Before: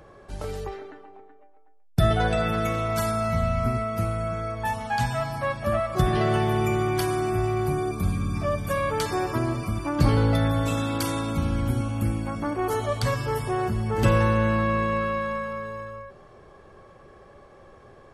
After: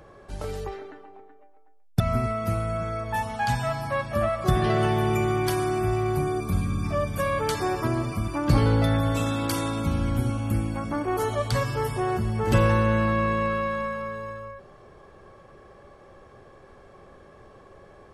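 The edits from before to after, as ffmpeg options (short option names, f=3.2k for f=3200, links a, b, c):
-filter_complex "[0:a]asplit=2[a][b];[a]atrim=end=2.002[c];[b]atrim=start=3.508[d];[c][d]acrossfade=d=0.004:c1=hsin:c2=hsin"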